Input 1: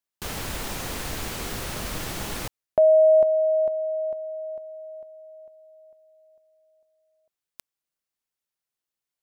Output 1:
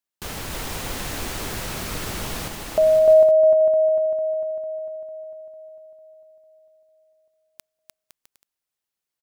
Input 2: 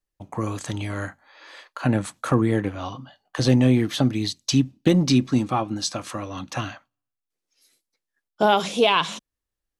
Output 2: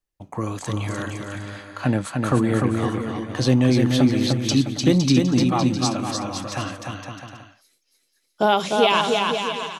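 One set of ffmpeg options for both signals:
-af "aecho=1:1:300|510|657|759.9|831.9:0.631|0.398|0.251|0.158|0.1"

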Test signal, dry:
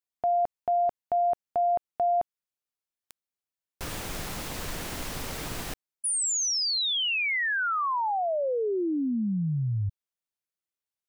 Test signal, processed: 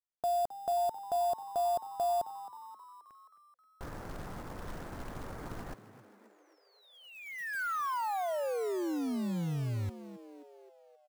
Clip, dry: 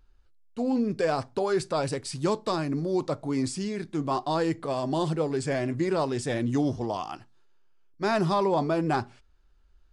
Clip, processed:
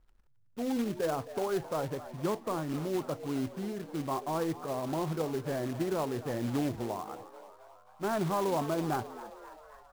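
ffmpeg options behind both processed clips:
-filter_complex "[0:a]lowpass=f=1600:w=0.5412,lowpass=f=1600:w=1.3066,acrusher=bits=3:mode=log:mix=0:aa=0.000001,asplit=2[s0][s1];[s1]asplit=6[s2][s3][s4][s5][s6][s7];[s2]adelay=265,afreqshift=97,volume=0.178[s8];[s3]adelay=530,afreqshift=194,volume=0.107[s9];[s4]adelay=795,afreqshift=291,volume=0.0638[s10];[s5]adelay=1060,afreqshift=388,volume=0.0385[s11];[s6]adelay=1325,afreqshift=485,volume=0.0232[s12];[s7]adelay=1590,afreqshift=582,volume=0.0138[s13];[s8][s9][s10][s11][s12][s13]amix=inputs=6:normalize=0[s14];[s0][s14]amix=inputs=2:normalize=0,volume=0.501"

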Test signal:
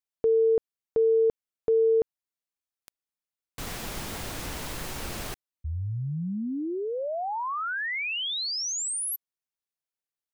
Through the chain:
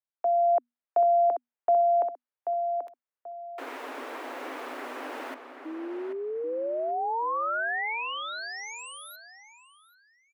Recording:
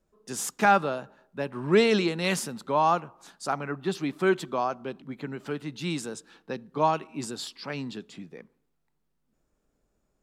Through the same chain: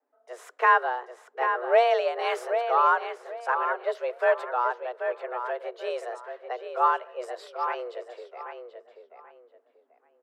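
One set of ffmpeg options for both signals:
-filter_complex "[0:a]afreqshift=240,acrossover=split=400 2400:gain=0.141 1 0.0794[s0][s1][s2];[s0][s1][s2]amix=inputs=3:normalize=0,asplit=2[s3][s4];[s4]adelay=785,lowpass=f=3100:p=1,volume=0.447,asplit=2[s5][s6];[s6]adelay=785,lowpass=f=3100:p=1,volume=0.26,asplit=2[s7][s8];[s8]adelay=785,lowpass=f=3100:p=1,volume=0.26[s9];[s3][s5][s7][s9]amix=inputs=4:normalize=0,dynaudnorm=f=110:g=9:m=1.58,adynamicequalizer=threshold=0.00631:dfrequency=4300:dqfactor=0.7:tfrequency=4300:tqfactor=0.7:attack=5:release=100:ratio=0.375:range=2:mode=boostabove:tftype=highshelf,volume=0.794"

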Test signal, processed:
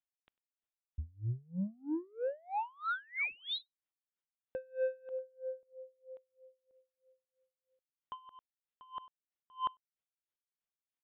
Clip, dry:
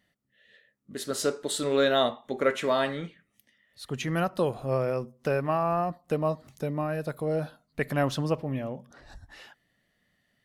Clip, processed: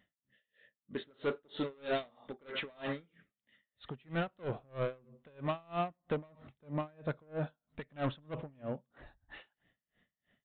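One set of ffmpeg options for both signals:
-af "aresample=8000,asoftclip=type=tanh:threshold=0.0398,aresample=44100,aecho=1:1:98:0.0708,aeval=exprs='val(0)*pow(10,-31*(0.5-0.5*cos(2*PI*3.1*n/s))/20)':c=same,volume=1.12"

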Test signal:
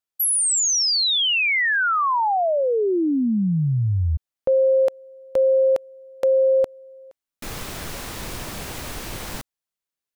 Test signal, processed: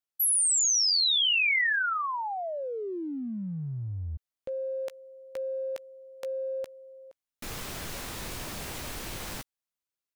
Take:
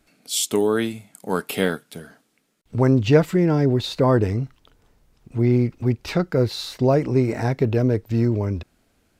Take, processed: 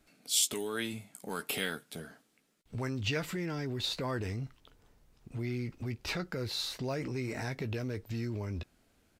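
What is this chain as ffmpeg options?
-filter_complex "[0:a]acrossover=split=1600[s0][s1];[s0]acompressor=threshold=0.0355:ratio=4:attack=0.21:release=39:knee=1:detection=rms[s2];[s1]asplit=2[s3][s4];[s4]adelay=15,volume=0.422[s5];[s3][s5]amix=inputs=2:normalize=0[s6];[s2][s6]amix=inputs=2:normalize=0,volume=0.562"

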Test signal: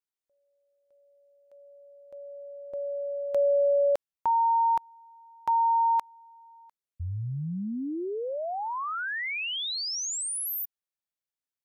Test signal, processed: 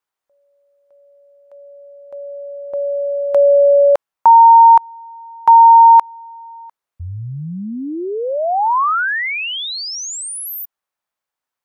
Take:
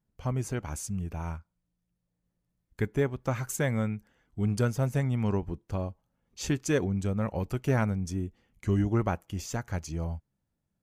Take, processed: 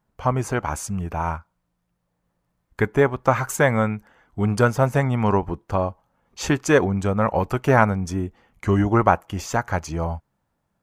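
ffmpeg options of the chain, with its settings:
-af "equalizer=f=1000:t=o:w=2.1:g=12.5,volume=1.78"

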